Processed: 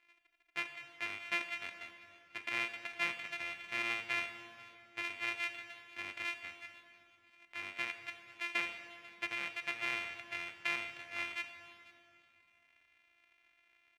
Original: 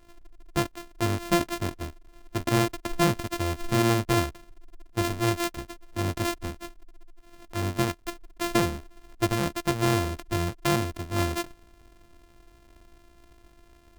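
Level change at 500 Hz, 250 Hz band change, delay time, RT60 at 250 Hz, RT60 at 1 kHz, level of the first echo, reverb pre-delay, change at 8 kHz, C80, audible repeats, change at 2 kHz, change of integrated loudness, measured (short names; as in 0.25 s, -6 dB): -23.0 dB, -27.5 dB, 0.492 s, 3.3 s, 2.4 s, -21.0 dB, 17 ms, -20.0 dB, 9.0 dB, 1, -2.0 dB, -11.0 dB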